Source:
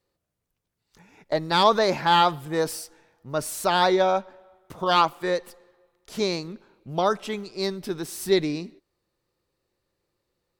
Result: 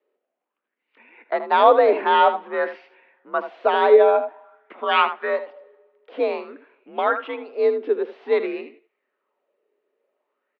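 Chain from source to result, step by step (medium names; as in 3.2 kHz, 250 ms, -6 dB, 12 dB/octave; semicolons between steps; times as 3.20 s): delay 78 ms -11.5 dB; mistuned SSB +56 Hz 230–3000 Hz; sweeping bell 0.51 Hz 390–2400 Hz +11 dB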